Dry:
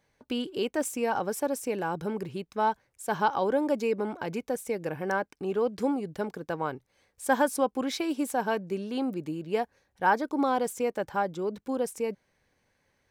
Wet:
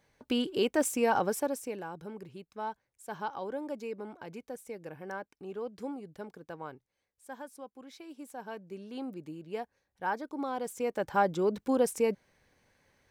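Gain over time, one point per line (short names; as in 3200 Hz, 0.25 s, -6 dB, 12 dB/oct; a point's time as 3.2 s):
1.24 s +1.5 dB
1.92 s -11 dB
6.71 s -11 dB
7.26 s -20 dB
7.83 s -20 dB
8.99 s -9 dB
10.52 s -9 dB
11.26 s +3 dB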